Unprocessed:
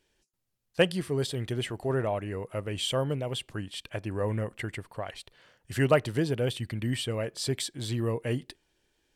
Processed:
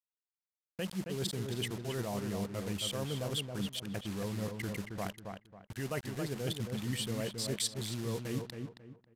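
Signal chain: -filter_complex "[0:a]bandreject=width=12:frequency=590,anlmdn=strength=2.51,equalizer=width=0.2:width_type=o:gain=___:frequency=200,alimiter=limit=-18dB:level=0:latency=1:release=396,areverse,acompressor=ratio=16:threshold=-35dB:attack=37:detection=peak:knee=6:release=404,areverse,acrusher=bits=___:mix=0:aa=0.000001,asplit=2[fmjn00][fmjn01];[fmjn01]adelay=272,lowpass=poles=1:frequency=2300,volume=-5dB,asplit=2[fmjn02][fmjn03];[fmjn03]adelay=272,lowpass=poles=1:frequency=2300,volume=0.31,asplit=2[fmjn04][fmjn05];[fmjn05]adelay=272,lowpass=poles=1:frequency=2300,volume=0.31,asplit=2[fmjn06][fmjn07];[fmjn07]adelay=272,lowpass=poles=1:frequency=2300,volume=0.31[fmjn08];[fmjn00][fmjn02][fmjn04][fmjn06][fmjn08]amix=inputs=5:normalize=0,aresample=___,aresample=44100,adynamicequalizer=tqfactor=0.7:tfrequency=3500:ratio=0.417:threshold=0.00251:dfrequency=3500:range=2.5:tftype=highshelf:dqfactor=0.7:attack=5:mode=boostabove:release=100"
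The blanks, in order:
14, 7, 32000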